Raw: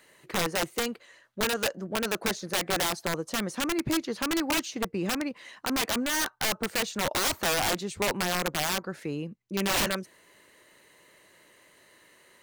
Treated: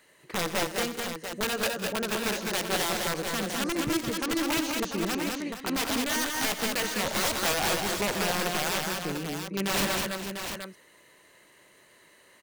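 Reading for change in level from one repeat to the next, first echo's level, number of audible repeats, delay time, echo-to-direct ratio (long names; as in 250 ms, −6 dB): repeats not evenly spaced, −13.0 dB, 5, 86 ms, −1.0 dB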